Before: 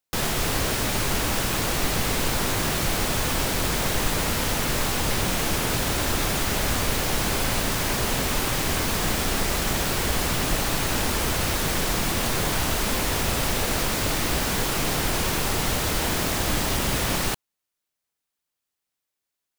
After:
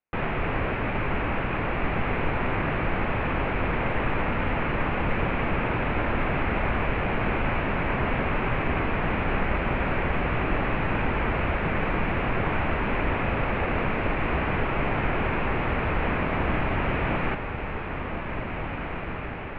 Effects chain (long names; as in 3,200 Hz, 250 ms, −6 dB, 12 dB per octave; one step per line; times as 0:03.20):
elliptic low-pass filter 2,500 Hz, stop band 70 dB
feedback delay with all-pass diffusion 1,934 ms, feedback 62%, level −7 dB